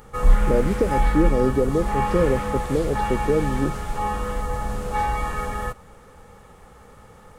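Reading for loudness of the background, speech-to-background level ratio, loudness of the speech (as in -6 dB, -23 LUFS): -26.0 LUFS, 2.5 dB, -23.5 LUFS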